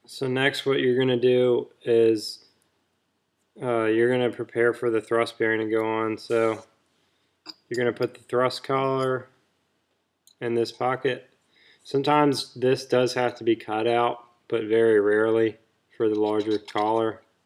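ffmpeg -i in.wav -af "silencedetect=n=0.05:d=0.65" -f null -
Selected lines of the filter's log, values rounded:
silence_start: 2.30
silence_end: 3.62 | silence_duration: 1.32
silence_start: 6.57
silence_end: 7.50 | silence_duration: 0.93
silence_start: 9.18
silence_end: 10.42 | silence_duration: 1.24
silence_start: 11.15
silence_end: 11.94 | silence_duration: 0.79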